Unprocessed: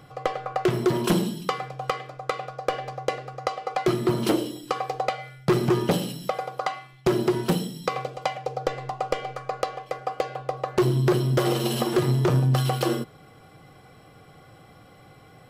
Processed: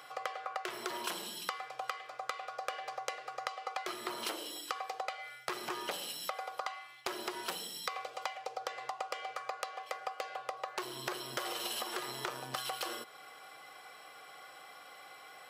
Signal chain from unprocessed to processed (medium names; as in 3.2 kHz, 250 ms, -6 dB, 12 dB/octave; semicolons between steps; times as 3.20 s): high-pass 890 Hz 12 dB/octave; compression 6:1, threshold -40 dBFS, peak gain reduction 16 dB; trim +4 dB